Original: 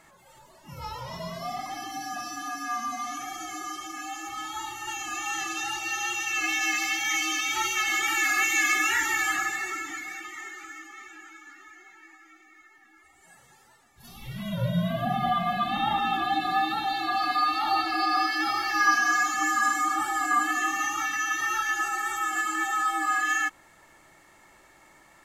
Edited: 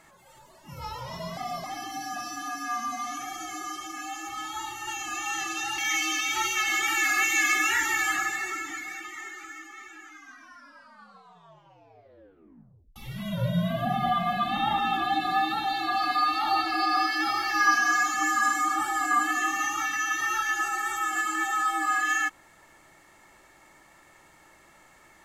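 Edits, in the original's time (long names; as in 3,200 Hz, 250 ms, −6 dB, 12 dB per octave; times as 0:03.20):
0:01.37–0:01.64: reverse
0:05.78–0:06.98: remove
0:11.22: tape stop 2.94 s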